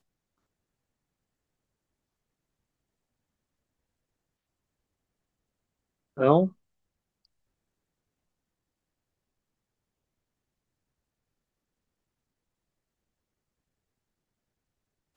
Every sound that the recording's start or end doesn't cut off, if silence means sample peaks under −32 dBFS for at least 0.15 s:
0:06.18–0:06.48

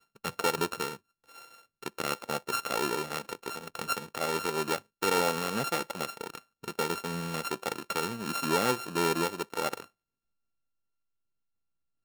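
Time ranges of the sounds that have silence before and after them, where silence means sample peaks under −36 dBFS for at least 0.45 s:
0:01.83–0:09.84

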